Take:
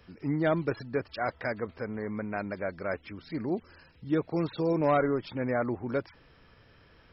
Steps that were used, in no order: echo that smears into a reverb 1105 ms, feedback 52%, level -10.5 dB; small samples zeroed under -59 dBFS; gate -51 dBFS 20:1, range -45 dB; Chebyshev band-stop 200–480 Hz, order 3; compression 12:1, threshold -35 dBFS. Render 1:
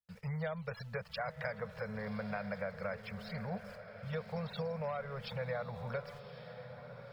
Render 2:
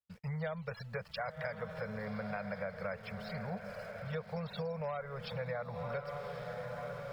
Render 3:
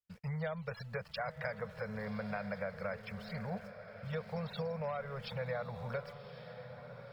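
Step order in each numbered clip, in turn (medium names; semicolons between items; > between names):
small samples zeroed > gate > Chebyshev band-stop > compression > echo that smears into a reverb; Chebyshev band-stop > small samples zeroed > echo that smears into a reverb > compression > gate; Chebyshev band-stop > small samples zeroed > compression > gate > echo that smears into a reverb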